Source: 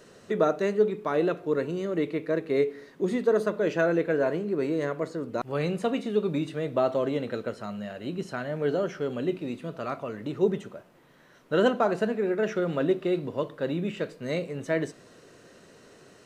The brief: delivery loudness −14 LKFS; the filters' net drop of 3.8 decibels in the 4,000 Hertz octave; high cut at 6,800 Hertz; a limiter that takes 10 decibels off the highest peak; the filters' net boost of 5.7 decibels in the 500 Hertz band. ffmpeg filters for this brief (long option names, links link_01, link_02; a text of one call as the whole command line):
ffmpeg -i in.wav -af "lowpass=6800,equalizer=frequency=500:width_type=o:gain=7,equalizer=frequency=4000:width_type=o:gain=-5,volume=12.5dB,alimiter=limit=-4dB:level=0:latency=1" out.wav